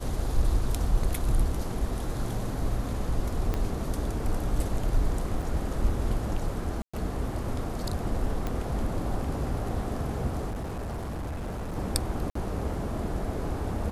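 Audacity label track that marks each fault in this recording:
3.540000	3.540000	pop -16 dBFS
5.420000	5.420000	gap 4.1 ms
6.820000	6.930000	gap 0.115 s
8.470000	8.470000	pop -18 dBFS
10.500000	11.760000	clipped -30.5 dBFS
12.300000	12.350000	gap 54 ms

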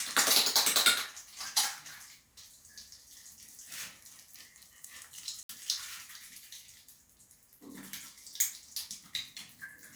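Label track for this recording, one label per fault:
5.430000	5.490000	gap 63 ms

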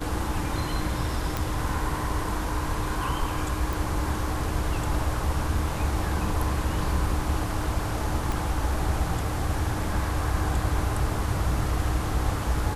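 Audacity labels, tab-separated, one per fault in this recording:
1.370000	1.370000	pop
3.730000	3.730000	pop
8.320000	8.320000	pop

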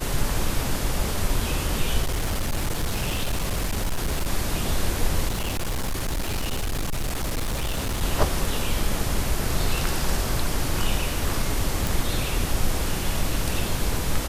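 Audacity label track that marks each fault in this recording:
2.020000	4.270000	clipped -20.5 dBFS
5.290000	8.030000	clipped -22.5 dBFS
11.870000	11.870000	pop

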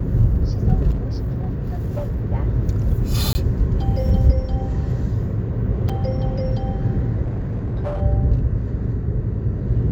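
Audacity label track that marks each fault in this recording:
0.900000	2.260000	clipped -19 dBFS
3.330000	3.350000	gap 20 ms
5.890000	5.890000	gap 5 ms
7.240000	8.020000	clipped -20.5 dBFS

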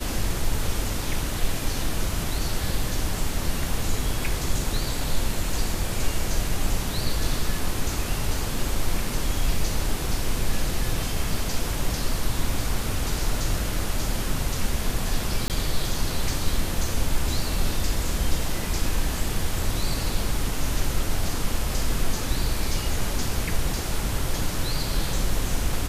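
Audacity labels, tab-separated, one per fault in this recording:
15.480000	15.500000	gap 18 ms

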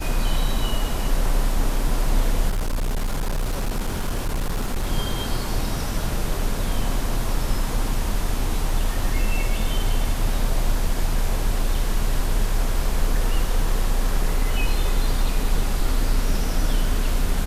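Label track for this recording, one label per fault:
2.500000	4.870000	clipped -19.5 dBFS

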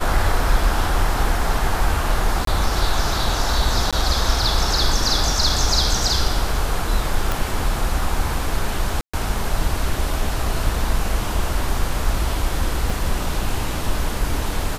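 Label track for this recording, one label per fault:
2.450000	2.470000	gap 23 ms
3.910000	3.930000	gap 16 ms
7.320000	7.320000	pop
9.010000	9.130000	gap 0.125 s
12.900000	12.900000	gap 3.2 ms

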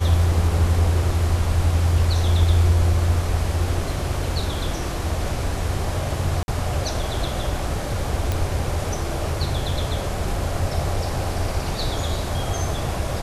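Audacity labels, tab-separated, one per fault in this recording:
6.430000	6.480000	gap 51 ms
8.320000	8.320000	pop

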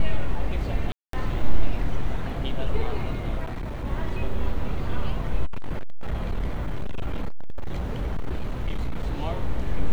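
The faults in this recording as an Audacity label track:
0.920000	1.130000	gap 0.213 s
3.440000	3.860000	clipped -27.5 dBFS
5.450000	9.030000	clipped -21 dBFS

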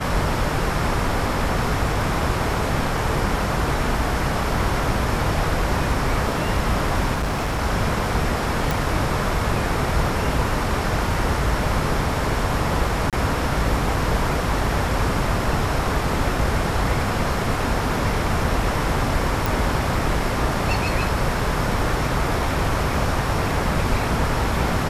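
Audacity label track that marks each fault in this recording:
7.140000	7.610000	clipped -19.5 dBFS
8.710000	8.710000	pop
13.100000	13.130000	gap 27 ms
19.460000	19.460000	pop

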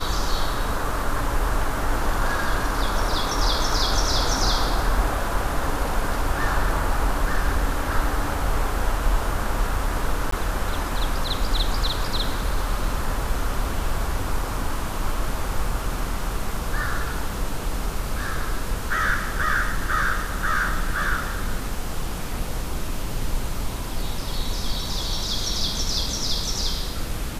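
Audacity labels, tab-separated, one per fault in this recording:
10.310000	10.320000	gap 14 ms

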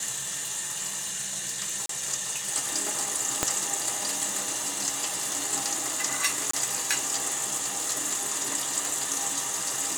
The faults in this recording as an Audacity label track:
1.860000	1.890000	gap 33 ms
3.430000	3.430000	pop -6 dBFS
6.510000	6.530000	gap 24 ms

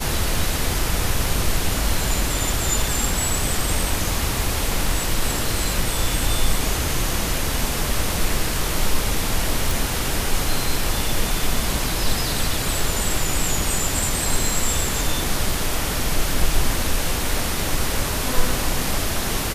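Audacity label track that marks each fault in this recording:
9.710000	9.710000	pop

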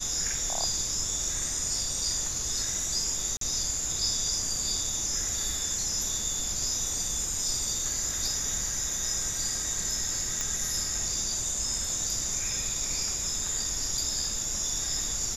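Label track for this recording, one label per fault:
3.370000	3.410000	gap 43 ms
10.410000	10.410000	pop -15 dBFS

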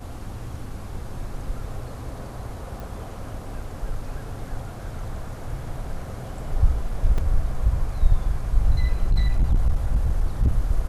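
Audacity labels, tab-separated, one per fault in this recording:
2.800000	2.800000	pop
7.180000	7.180000	gap 3.7 ms
9.030000	10.520000	clipped -14.5 dBFS

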